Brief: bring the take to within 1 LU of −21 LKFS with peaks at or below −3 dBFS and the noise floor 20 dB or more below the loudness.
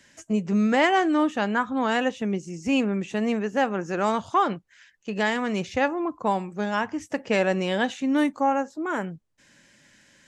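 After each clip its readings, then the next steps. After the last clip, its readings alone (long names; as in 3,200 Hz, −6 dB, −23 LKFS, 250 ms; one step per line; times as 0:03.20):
integrated loudness −25.0 LKFS; sample peak −9.5 dBFS; target loudness −21.0 LKFS
→ level +4 dB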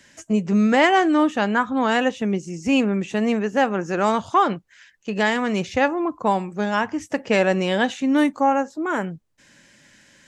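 integrated loudness −21.0 LKFS; sample peak −5.5 dBFS; background noise floor −56 dBFS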